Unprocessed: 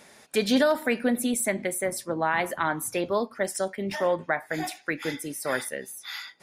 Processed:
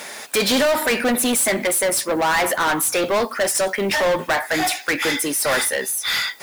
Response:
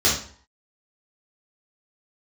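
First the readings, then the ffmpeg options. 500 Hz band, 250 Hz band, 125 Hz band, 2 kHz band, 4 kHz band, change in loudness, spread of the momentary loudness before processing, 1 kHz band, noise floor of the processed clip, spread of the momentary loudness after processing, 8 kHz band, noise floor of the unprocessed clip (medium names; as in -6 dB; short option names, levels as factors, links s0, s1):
+6.5 dB, +4.0 dB, +3.5 dB, +9.5 dB, +13.0 dB, +8.5 dB, 9 LU, +8.0 dB, -37 dBFS, 3 LU, +12.5 dB, -55 dBFS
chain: -filter_complex "[0:a]asplit=2[s0][s1];[s1]highpass=f=720:p=1,volume=20,asoftclip=type=tanh:threshold=0.266[s2];[s0][s2]amix=inputs=2:normalize=0,lowpass=f=3200:p=1,volume=0.501,acrusher=bits=8:mix=0:aa=0.000001,crystalizer=i=1.5:c=0"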